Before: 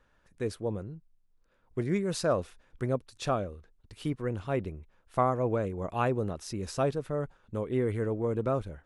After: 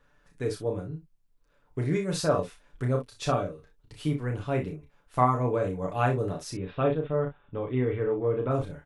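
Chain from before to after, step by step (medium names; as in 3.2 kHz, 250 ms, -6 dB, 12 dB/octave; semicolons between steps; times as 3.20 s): 6.50–8.51 s: Chebyshev low-pass 3.6 kHz, order 6; comb 6.9 ms, depth 61%; early reflections 32 ms -4.5 dB, 60 ms -10.5 dB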